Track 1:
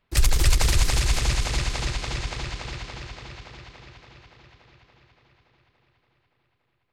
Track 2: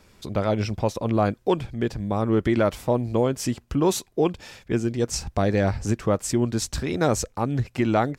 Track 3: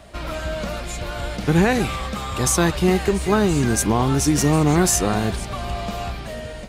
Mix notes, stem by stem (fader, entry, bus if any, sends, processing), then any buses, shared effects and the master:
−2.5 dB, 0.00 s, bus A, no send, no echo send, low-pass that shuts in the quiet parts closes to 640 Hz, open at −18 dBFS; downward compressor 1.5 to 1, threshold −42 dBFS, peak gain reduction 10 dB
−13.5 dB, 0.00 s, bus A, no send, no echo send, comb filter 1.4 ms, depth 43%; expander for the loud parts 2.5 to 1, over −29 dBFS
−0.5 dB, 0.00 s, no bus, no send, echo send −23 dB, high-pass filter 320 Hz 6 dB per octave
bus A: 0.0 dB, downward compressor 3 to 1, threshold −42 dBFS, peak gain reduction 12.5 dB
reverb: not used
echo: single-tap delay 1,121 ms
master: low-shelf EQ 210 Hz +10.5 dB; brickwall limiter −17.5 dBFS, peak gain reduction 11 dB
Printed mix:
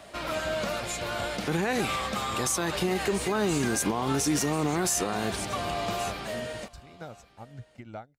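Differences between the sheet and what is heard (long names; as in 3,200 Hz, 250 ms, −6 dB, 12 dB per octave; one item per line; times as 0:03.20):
stem 1: muted
stem 2 −13.5 dB → −7.0 dB
master: missing low-shelf EQ 210 Hz +10.5 dB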